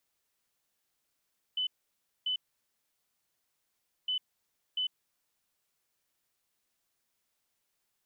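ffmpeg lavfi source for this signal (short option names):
-f lavfi -i "aevalsrc='0.0376*sin(2*PI*3010*t)*clip(min(mod(mod(t,2.51),0.69),0.1-mod(mod(t,2.51),0.69))/0.005,0,1)*lt(mod(t,2.51),1.38)':d=5.02:s=44100"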